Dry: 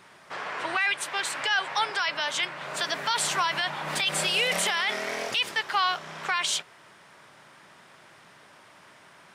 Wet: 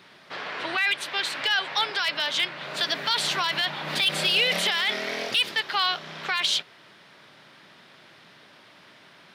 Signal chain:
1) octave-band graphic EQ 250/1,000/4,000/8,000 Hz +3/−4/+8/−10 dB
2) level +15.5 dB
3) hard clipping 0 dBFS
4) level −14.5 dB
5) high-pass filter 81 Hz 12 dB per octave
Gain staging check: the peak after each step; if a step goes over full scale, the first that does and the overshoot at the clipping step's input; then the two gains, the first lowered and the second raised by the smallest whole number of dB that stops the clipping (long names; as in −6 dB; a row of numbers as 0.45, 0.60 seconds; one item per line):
−11.5, +4.0, 0.0, −14.5, −13.5 dBFS
step 2, 4.0 dB
step 2 +11.5 dB, step 4 −10.5 dB